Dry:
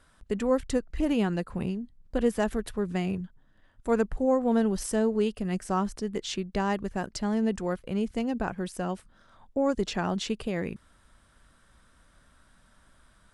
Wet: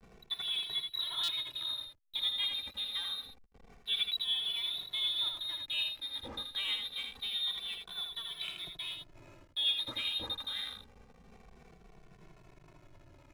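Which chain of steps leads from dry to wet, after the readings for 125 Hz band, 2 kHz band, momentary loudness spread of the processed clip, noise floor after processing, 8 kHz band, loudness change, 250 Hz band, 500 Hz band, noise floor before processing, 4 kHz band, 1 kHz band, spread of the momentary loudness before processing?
−23.5 dB, −5.0 dB, 9 LU, −61 dBFS, −11.5 dB, −5.0 dB, −31.0 dB, −29.0 dB, −62 dBFS, +12.5 dB, −18.0 dB, 9 LU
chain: spike at every zero crossing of −23 dBFS
noise gate −43 dBFS, range −7 dB
hum removal 129 Hz, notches 11
dynamic equaliser 1,500 Hz, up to +4 dB, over −53 dBFS, Q 5.8
voice inversion scrambler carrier 3,900 Hz
slack as between gear wheels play −33.5 dBFS
on a send: single-tap delay 80 ms −5.5 dB
on the sum: buffer that repeats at 0:01.23, samples 256, times 8
barber-pole flanger 2.2 ms −0.26 Hz
level −6 dB

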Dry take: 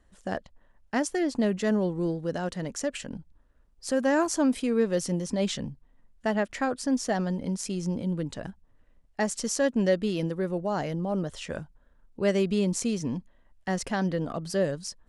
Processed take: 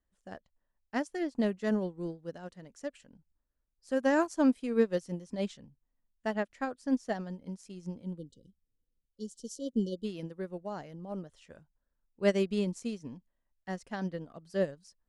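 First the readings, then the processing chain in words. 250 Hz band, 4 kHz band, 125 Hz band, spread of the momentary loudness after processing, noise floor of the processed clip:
−5.5 dB, −10.0 dB, −9.0 dB, 17 LU, −83 dBFS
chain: time-frequency box erased 0:08.18–0:10.05, 540–2,900 Hz
expander for the loud parts 2.5 to 1, over −34 dBFS

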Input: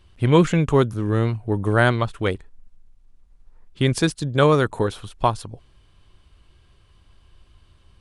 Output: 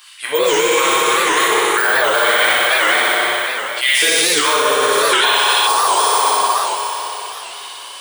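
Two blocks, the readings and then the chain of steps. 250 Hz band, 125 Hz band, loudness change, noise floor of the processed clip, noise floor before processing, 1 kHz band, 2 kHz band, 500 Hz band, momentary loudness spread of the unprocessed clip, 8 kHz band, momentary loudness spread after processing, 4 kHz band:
−5.5 dB, below −20 dB, +7.0 dB, −32 dBFS, −56 dBFS, +12.5 dB, +15.0 dB, +5.0 dB, 9 LU, +22.0 dB, 11 LU, +19.0 dB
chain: low-shelf EQ 450 Hz −6 dB
auto-filter high-pass sine 1.9 Hz 430–2,200 Hz
de-essing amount 70%
on a send: flutter between parallel walls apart 10.4 metres, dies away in 1.2 s
on the sum: dense smooth reverb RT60 3.7 s, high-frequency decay 0.95×, DRR −9.5 dB
reversed playback
downward compressor 6 to 1, threshold −21 dBFS, peak gain reduction 17.5 dB
reversed playback
first-order pre-emphasis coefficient 0.9
gain on a spectral selection 0:05.14–0:05.67, 1,400–4,200 Hz +11 dB
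boost into a limiter +29 dB
wow of a warped record 78 rpm, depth 160 cents
level −3.5 dB

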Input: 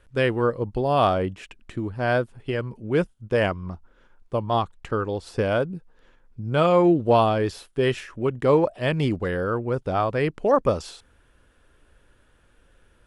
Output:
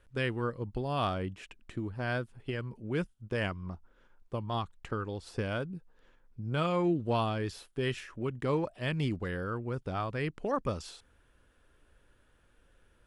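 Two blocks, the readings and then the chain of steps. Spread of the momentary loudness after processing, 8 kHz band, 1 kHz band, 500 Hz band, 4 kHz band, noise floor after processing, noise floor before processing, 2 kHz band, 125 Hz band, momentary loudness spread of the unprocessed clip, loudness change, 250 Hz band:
11 LU, can't be measured, −11.5 dB, −13.0 dB, −7.0 dB, −66 dBFS, −60 dBFS, −8.0 dB, −7.0 dB, 12 LU, −11.0 dB, −9.0 dB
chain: dynamic equaliser 590 Hz, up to −8 dB, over −33 dBFS, Q 0.81
level −6.5 dB

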